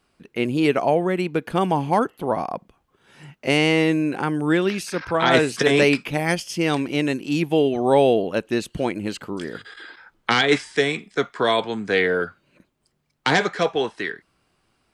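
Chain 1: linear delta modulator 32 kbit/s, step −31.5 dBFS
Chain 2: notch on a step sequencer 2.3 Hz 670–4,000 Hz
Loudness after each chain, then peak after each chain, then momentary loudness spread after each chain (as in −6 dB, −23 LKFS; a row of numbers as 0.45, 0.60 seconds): −22.5, −23.0 LKFS; −5.5, −5.5 dBFS; 18, 12 LU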